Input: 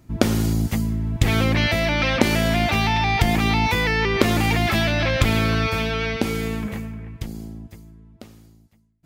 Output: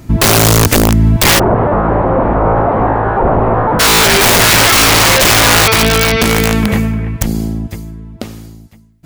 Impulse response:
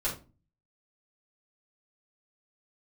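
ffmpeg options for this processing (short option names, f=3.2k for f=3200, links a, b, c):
-filter_complex "[0:a]aeval=exprs='(mod(6.68*val(0)+1,2)-1)/6.68':c=same,asplit=3[a][b][c];[a]afade=t=out:st=1.38:d=0.02[d];[b]lowpass=f=1k:w=0.5412,lowpass=f=1k:w=1.3066,afade=t=in:st=1.38:d=0.02,afade=t=out:st=3.79:d=0.02[e];[c]afade=t=in:st=3.79:d=0.02[f];[d][e][f]amix=inputs=3:normalize=0,alimiter=level_in=19.5dB:limit=-1dB:release=50:level=0:latency=1,volume=-2dB"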